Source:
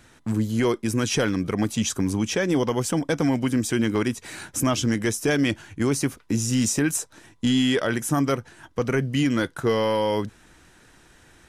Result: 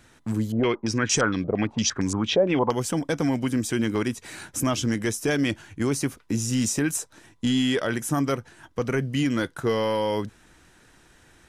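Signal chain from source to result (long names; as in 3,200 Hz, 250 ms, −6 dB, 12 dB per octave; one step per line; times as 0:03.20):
0:00.52–0:02.71: low-pass on a step sequencer 8.7 Hz 640–7,300 Hz
level −2 dB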